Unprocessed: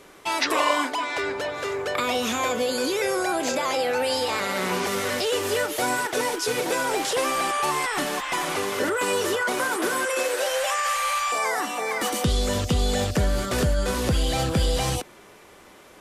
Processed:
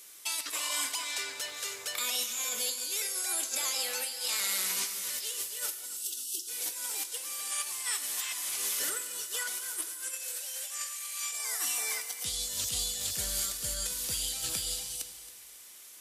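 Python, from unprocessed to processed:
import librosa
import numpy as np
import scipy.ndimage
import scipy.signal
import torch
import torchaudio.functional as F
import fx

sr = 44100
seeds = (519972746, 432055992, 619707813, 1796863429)

p1 = F.preemphasis(torch.from_numpy(x), 0.9).numpy()
p2 = fx.spec_erase(p1, sr, start_s=5.86, length_s=0.62, low_hz=410.0, high_hz=2600.0)
p3 = fx.high_shelf(p2, sr, hz=2300.0, db=11.5)
p4 = fx.over_compress(p3, sr, threshold_db=-28.0, ratio=-0.5)
p5 = p4 + fx.echo_feedback(p4, sr, ms=273, feedback_pct=39, wet_db=-15.5, dry=0)
p6 = fx.rev_gated(p5, sr, seeds[0], gate_ms=440, shape='falling', drr_db=9.0)
y = p6 * librosa.db_to_amplitude(-6.5)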